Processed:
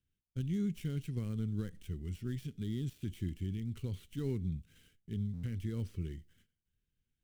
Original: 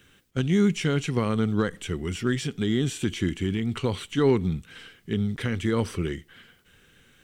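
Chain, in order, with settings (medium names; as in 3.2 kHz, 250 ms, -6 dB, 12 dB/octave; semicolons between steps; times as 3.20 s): dead-time distortion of 0.073 ms; gate -50 dBFS, range -15 dB; amplifier tone stack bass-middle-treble 10-0-1; buffer glitch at 5.33 s, samples 512, times 8; trim +3.5 dB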